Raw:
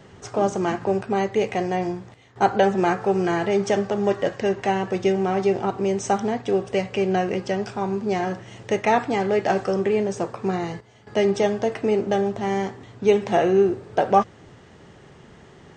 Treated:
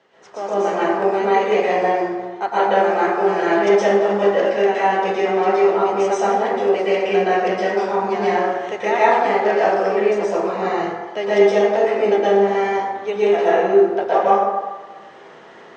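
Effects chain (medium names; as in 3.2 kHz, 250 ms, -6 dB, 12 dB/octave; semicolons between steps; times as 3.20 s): level rider gain up to 8 dB; band-pass 450–4600 Hz; plate-style reverb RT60 1.3 s, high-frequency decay 0.45×, pre-delay 105 ms, DRR -9 dB; trim -7.5 dB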